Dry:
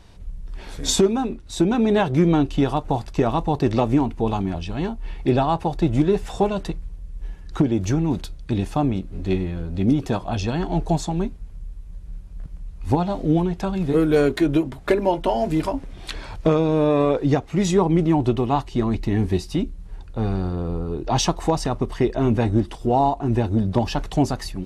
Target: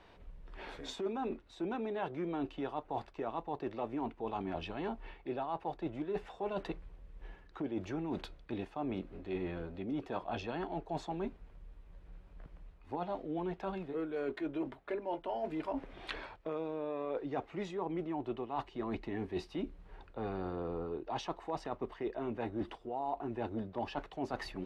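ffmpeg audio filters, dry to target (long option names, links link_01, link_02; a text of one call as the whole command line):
ffmpeg -i in.wav -filter_complex "[0:a]acrossover=split=290 3400:gain=0.178 1 0.1[link_01][link_02][link_03];[link_01][link_02][link_03]amix=inputs=3:normalize=0,areverse,acompressor=threshold=-31dB:ratio=12,areverse,volume=-3dB" out.wav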